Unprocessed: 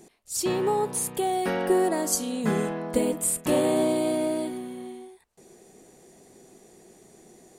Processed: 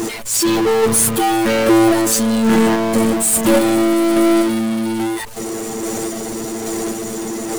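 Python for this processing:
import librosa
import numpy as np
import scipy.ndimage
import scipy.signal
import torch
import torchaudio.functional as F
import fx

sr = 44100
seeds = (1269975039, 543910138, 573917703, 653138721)

y = fx.chopper(x, sr, hz=1.2, depth_pct=60, duty_pct=30)
y = fx.robotise(y, sr, hz=112.0)
y = fx.power_curve(y, sr, exponent=0.35)
y = F.gain(torch.from_numpy(y), 5.0).numpy()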